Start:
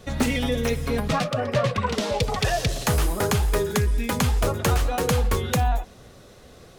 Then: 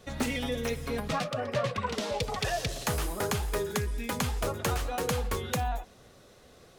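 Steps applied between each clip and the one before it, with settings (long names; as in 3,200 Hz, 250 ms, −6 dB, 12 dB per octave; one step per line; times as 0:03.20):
low-shelf EQ 220 Hz −5 dB
level −6 dB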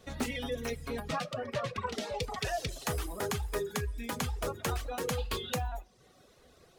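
gain on a spectral selection 0:05.18–0:05.53, 2,400–5,000 Hz +9 dB
coupled-rooms reverb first 0.31 s, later 2.3 s, from −21 dB, DRR 9.5 dB
reverb reduction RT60 0.71 s
level −3.5 dB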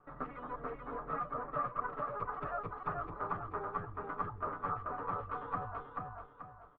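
lower of the sound and its delayed copy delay 6.8 ms
transistor ladder low-pass 1,300 Hz, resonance 80%
repeating echo 434 ms, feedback 37%, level −3 dB
level +4 dB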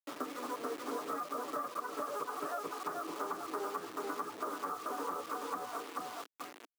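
bit reduction 8 bits
downward compressor, threshold −38 dBFS, peak gain reduction 8.5 dB
four-pole ladder high-pass 260 Hz, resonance 50%
level +12 dB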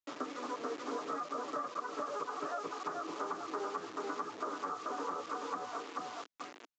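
downsampling to 16,000 Hz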